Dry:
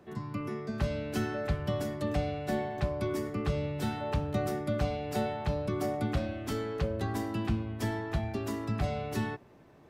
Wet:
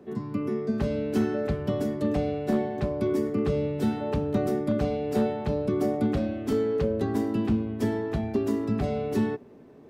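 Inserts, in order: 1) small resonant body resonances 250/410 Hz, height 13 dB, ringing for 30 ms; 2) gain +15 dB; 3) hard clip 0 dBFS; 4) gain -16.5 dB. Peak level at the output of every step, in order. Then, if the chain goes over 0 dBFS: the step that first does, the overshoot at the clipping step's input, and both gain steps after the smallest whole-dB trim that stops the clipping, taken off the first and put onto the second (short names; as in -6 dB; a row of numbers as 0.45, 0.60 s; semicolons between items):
-10.5, +4.5, 0.0, -16.5 dBFS; step 2, 4.5 dB; step 2 +10 dB, step 4 -11.5 dB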